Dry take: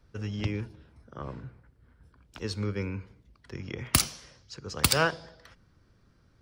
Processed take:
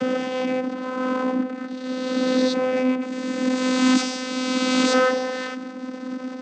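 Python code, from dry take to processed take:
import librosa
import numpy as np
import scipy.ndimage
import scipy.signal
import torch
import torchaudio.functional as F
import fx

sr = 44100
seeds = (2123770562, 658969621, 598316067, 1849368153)

y = fx.spec_swells(x, sr, rise_s=1.13)
y = fx.power_curve(y, sr, exponent=0.35)
y = fx.vocoder(y, sr, bands=16, carrier='saw', carrier_hz=256.0)
y = y * 10.0 ** (-7.0 / 20.0)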